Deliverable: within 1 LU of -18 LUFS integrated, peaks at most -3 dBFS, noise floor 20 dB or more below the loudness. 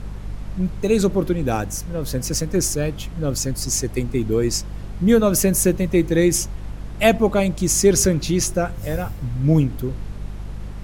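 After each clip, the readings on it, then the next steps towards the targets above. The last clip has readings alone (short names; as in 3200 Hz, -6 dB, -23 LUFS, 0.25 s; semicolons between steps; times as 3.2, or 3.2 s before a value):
hum 50 Hz; harmonics up to 200 Hz; hum level -30 dBFS; noise floor -33 dBFS; noise floor target -40 dBFS; loudness -20.0 LUFS; peak -2.5 dBFS; loudness target -18.0 LUFS
-> de-hum 50 Hz, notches 4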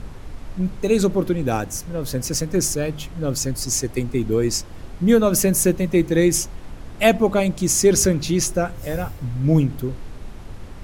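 hum none; noise floor -36 dBFS; noise floor target -41 dBFS
-> noise print and reduce 6 dB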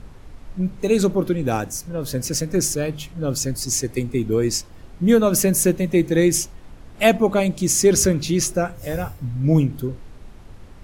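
noise floor -42 dBFS; loudness -20.5 LUFS; peak -3.0 dBFS; loudness target -18.0 LUFS
-> gain +2.5 dB; limiter -3 dBFS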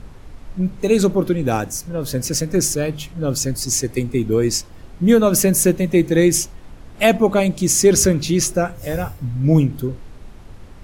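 loudness -18.0 LUFS; peak -3.0 dBFS; noise floor -40 dBFS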